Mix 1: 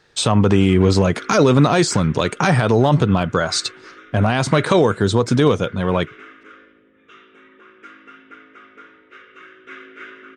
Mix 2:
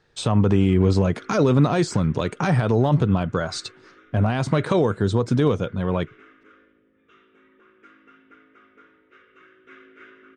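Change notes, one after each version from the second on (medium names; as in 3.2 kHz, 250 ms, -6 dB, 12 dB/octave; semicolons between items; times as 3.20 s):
speech -7.0 dB; background -9.5 dB; master: add tilt EQ -1.5 dB/octave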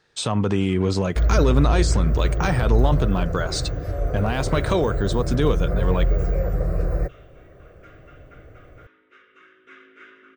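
second sound: unmuted; master: add tilt EQ +1.5 dB/octave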